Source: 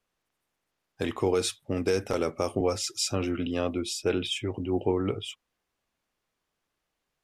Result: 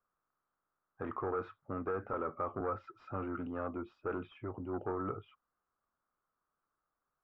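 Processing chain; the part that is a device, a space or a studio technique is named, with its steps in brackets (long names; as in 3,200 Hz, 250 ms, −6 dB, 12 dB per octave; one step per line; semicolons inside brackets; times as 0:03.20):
overdriven synthesiser ladder filter (soft clipping −22.5 dBFS, distortion −13 dB; transistor ladder low-pass 1,400 Hz, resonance 70%)
level +2.5 dB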